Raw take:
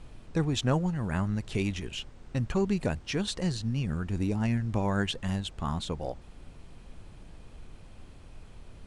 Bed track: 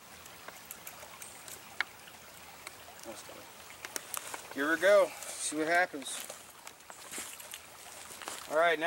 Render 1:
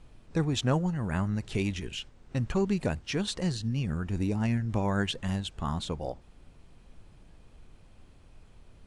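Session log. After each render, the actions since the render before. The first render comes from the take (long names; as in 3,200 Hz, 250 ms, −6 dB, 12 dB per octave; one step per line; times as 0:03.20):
noise reduction from a noise print 6 dB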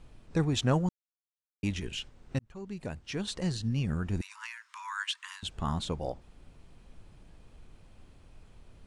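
0:00.89–0:01.63: silence
0:02.39–0:03.71: fade in
0:04.21–0:05.43: Butterworth high-pass 960 Hz 96 dB per octave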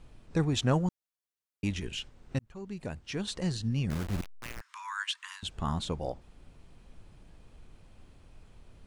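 0:03.90–0:04.61: hold until the input has moved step −33 dBFS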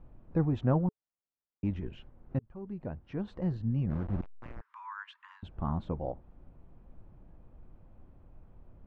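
low-pass filter 1,000 Hz 12 dB per octave
notch filter 430 Hz, Q 12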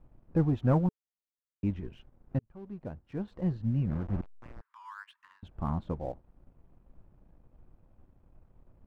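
leveller curve on the samples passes 1
expander for the loud parts 1.5 to 1, over −35 dBFS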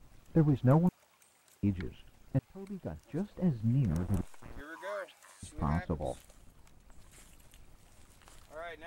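mix in bed track −17 dB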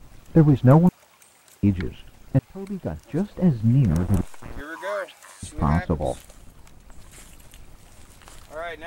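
level +11 dB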